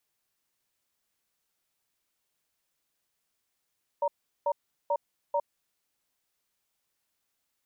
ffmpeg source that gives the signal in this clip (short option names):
-f lavfi -i "aevalsrc='0.0473*(sin(2*PI*578*t)+sin(2*PI*933*t))*clip(min(mod(t,0.44),0.06-mod(t,0.44))/0.005,0,1)':d=1.75:s=44100"